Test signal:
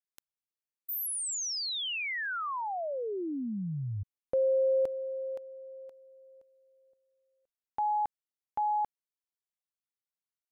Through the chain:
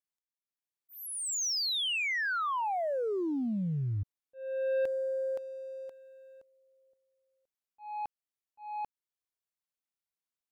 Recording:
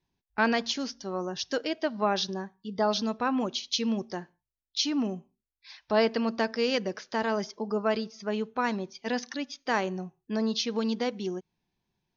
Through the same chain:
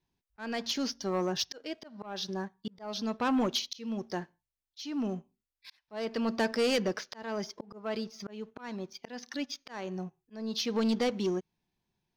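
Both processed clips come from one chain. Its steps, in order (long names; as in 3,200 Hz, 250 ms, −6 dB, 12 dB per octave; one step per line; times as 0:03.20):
leveller curve on the samples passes 1
volume swells 576 ms
soft clipping −22 dBFS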